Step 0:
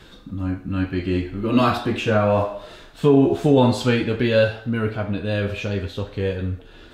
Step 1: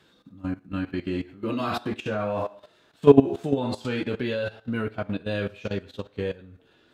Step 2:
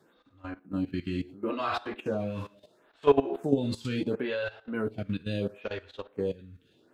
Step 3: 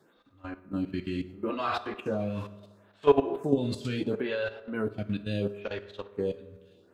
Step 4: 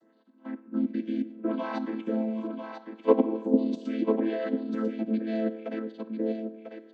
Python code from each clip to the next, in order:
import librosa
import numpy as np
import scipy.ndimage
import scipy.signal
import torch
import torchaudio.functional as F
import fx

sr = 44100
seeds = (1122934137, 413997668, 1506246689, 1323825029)

y1 = scipy.signal.sosfilt(scipy.signal.butter(2, 120.0, 'highpass', fs=sr, output='sos'), x)
y1 = fx.level_steps(y1, sr, step_db=13)
y1 = fx.upward_expand(y1, sr, threshold_db=-41.0, expansion=1.5)
y1 = y1 * 10.0 ** (5.5 / 20.0)
y2 = fx.stagger_phaser(y1, sr, hz=0.73)
y3 = fx.rev_fdn(y2, sr, rt60_s=1.6, lf_ratio=0.75, hf_ratio=0.45, size_ms=15.0, drr_db=13.0)
y4 = fx.chord_vocoder(y3, sr, chord='minor triad', root=57)
y4 = y4 + 10.0 ** (-7.0 / 20.0) * np.pad(y4, (int(995 * sr / 1000.0), 0))[:len(y4)]
y4 = y4 * 10.0 ** (2.0 / 20.0)